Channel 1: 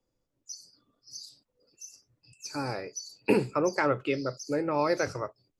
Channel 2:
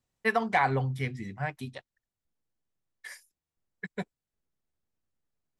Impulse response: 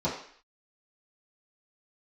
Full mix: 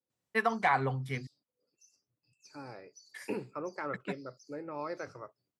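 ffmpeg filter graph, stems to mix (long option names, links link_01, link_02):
-filter_complex "[0:a]lowpass=frequency=3500:poles=1,volume=-12.5dB[link_01];[1:a]adelay=100,volume=-3.5dB,asplit=3[link_02][link_03][link_04];[link_02]atrim=end=1.27,asetpts=PTS-STARTPTS,afade=type=out:start_time=1.266:duration=0.004:curve=hsin[link_05];[link_03]atrim=start=1.27:end=2.93,asetpts=PTS-STARTPTS,volume=0[link_06];[link_04]atrim=start=2.93,asetpts=PTS-STARTPTS,afade=type=in:duration=0.004:curve=hsin[link_07];[link_05][link_06][link_07]concat=n=3:v=0:a=1[link_08];[link_01][link_08]amix=inputs=2:normalize=0,highpass=110,adynamicequalizer=threshold=0.00355:dfrequency=1200:dqfactor=2.8:tfrequency=1200:tqfactor=2.8:attack=5:release=100:ratio=0.375:range=2.5:mode=boostabove:tftype=bell"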